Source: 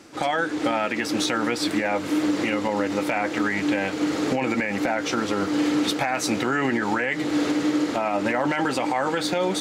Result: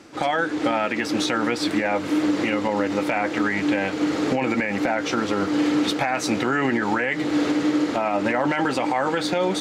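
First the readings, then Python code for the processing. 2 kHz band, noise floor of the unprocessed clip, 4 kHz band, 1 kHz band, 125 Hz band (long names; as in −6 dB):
+1.0 dB, −30 dBFS, 0.0 dB, +1.5 dB, +1.5 dB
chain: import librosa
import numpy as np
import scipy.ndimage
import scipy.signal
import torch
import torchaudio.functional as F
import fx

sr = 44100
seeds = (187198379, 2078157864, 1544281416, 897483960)

y = fx.high_shelf(x, sr, hz=7400.0, db=-8.0)
y = F.gain(torch.from_numpy(y), 1.5).numpy()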